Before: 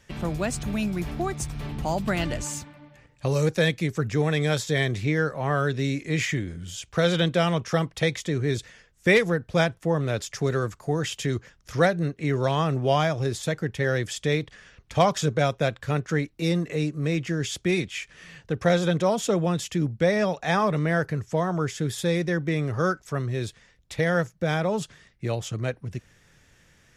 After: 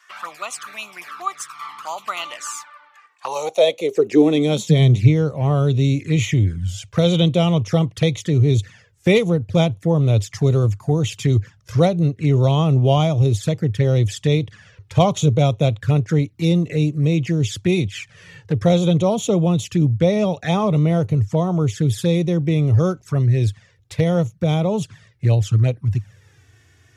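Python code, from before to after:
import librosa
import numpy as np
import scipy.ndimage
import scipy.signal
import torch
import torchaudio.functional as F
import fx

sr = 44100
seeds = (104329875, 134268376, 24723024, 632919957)

y = fx.env_flanger(x, sr, rest_ms=2.9, full_db=-23.0)
y = fx.filter_sweep_highpass(y, sr, from_hz=1200.0, to_hz=100.0, start_s=3.08, end_s=5.18, q=6.1)
y = y * 10.0 ** (5.0 / 20.0)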